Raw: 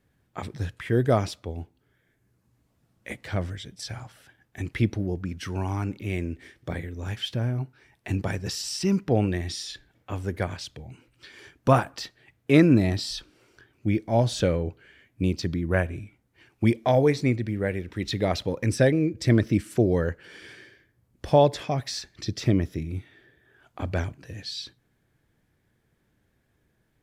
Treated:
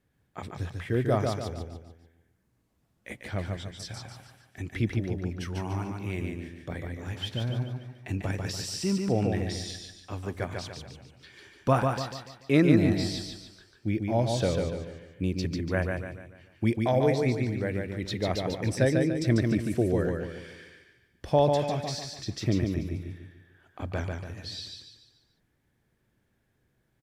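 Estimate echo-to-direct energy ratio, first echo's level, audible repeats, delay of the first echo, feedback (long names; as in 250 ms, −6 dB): −3.0 dB, −4.0 dB, 5, 145 ms, 42%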